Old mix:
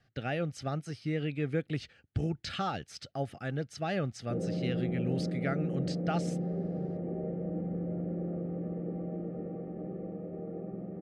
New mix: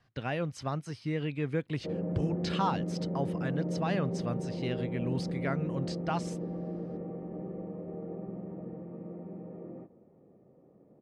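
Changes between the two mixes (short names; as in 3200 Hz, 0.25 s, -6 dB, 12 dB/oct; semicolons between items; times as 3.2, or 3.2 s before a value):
background: entry -2.45 s; master: remove Butterworth band-stop 1000 Hz, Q 3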